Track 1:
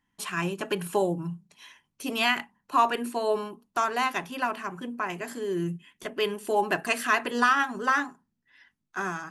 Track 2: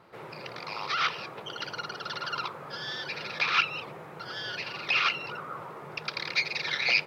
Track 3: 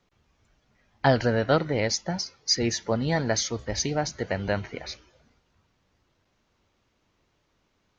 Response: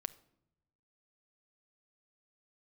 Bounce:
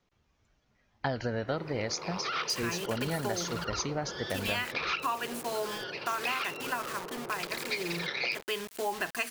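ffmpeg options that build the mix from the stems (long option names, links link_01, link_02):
-filter_complex "[0:a]equalizer=frequency=1700:width=0.84:gain=2,acrusher=bits=5:mix=0:aa=0.000001,tiltshelf=frequency=970:gain=-3,adelay=2300,volume=-5dB[link_01];[1:a]equalizer=frequency=380:width_type=o:width=1.4:gain=9.5,adelay=1350,volume=-5dB[link_02];[2:a]volume=-5dB[link_03];[link_01][link_02][link_03]amix=inputs=3:normalize=0,acompressor=threshold=-28dB:ratio=6"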